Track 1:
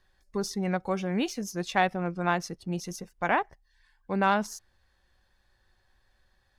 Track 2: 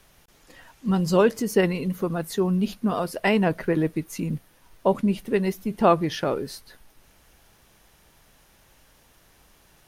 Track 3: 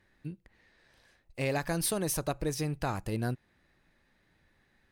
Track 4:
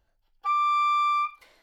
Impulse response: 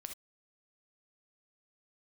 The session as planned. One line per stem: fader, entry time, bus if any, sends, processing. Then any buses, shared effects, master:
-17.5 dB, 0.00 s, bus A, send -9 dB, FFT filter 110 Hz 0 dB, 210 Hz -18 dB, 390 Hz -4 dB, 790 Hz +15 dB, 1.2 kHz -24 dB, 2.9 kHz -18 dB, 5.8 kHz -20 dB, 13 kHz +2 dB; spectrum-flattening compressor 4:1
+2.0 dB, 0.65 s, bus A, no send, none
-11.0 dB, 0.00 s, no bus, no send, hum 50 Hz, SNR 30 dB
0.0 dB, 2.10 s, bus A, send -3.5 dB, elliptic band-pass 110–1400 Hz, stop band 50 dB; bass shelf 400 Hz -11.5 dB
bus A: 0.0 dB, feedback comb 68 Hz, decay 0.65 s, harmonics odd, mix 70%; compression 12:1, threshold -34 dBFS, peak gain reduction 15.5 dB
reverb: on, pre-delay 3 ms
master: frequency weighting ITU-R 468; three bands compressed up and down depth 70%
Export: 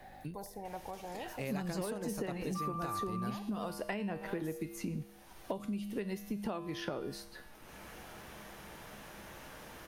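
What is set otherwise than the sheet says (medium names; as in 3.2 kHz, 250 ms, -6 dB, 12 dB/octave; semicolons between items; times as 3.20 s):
stem 1 -17.5 dB -> -27.5 dB; stem 4: send off; master: missing frequency weighting ITU-R 468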